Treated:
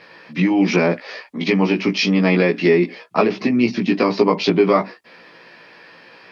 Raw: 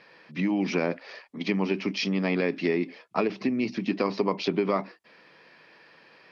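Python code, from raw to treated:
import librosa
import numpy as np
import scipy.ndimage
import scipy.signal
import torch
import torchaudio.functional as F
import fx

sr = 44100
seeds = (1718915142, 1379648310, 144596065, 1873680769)

y = fx.doubler(x, sr, ms=17.0, db=-2.0)
y = y * 10.0 ** (8.0 / 20.0)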